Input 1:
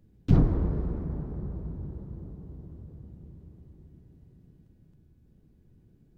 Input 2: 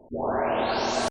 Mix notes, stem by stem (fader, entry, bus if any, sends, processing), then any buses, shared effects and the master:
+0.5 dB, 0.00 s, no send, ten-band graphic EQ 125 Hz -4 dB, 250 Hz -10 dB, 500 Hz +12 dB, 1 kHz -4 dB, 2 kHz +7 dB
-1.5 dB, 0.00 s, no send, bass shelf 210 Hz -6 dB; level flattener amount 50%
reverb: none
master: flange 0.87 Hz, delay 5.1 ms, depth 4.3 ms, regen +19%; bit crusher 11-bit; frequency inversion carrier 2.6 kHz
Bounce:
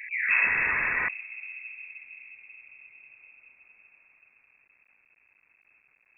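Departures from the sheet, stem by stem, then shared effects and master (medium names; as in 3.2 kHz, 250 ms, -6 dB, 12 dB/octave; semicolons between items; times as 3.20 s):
stem 1 +0.5 dB -> -5.5 dB; master: missing flange 0.87 Hz, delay 5.1 ms, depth 4.3 ms, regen +19%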